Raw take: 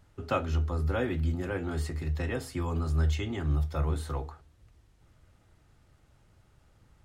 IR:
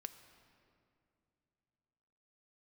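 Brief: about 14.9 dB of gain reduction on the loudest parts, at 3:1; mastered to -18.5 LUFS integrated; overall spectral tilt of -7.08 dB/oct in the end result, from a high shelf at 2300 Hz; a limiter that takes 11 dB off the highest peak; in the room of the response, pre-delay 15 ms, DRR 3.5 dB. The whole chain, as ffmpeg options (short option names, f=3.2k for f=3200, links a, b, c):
-filter_complex "[0:a]highshelf=f=2.3k:g=-4,acompressor=threshold=-44dB:ratio=3,alimiter=level_in=15dB:limit=-24dB:level=0:latency=1,volume=-15dB,asplit=2[a][b];[1:a]atrim=start_sample=2205,adelay=15[c];[b][c]afir=irnorm=-1:irlink=0,volume=1dB[d];[a][d]amix=inputs=2:normalize=0,volume=26.5dB"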